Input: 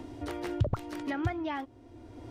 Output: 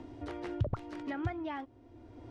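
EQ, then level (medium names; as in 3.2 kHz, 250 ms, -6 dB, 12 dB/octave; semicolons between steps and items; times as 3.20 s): low-pass 8.3 kHz 12 dB/octave; treble shelf 4.7 kHz -8.5 dB; -4.0 dB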